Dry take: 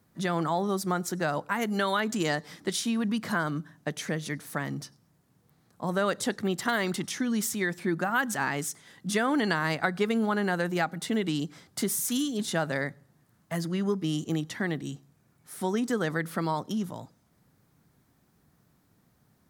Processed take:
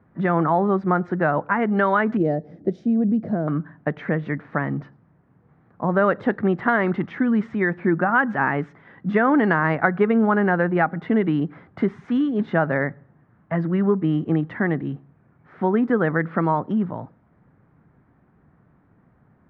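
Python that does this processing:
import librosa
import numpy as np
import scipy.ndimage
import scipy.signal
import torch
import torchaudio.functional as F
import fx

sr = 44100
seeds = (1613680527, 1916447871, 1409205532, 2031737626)

y = fx.curve_eq(x, sr, hz=(670.0, 1000.0, 3100.0, 5700.0), db=(0, -24, -17, 1), at=(2.17, 3.48))
y = scipy.signal.sosfilt(scipy.signal.butter(4, 1900.0, 'lowpass', fs=sr, output='sos'), y)
y = y * 10.0 ** (8.5 / 20.0)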